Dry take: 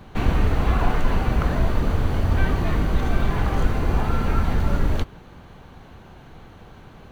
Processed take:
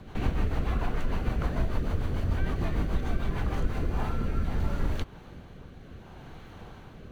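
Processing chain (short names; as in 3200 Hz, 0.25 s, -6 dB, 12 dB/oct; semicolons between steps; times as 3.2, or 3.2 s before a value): compressor 2:1, threshold -27 dBFS, peak gain reduction 8.5 dB; rotary speaker horn 6.7 Hz, later 0.65 Hz, at 3.39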